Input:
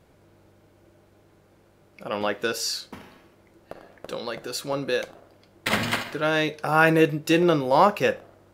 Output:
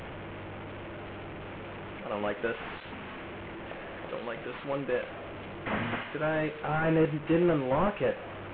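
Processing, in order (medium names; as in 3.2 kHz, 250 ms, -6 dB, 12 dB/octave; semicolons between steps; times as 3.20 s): one-bit delta coder 16 kbps, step -30.5 dBFS; trim -4.5 dB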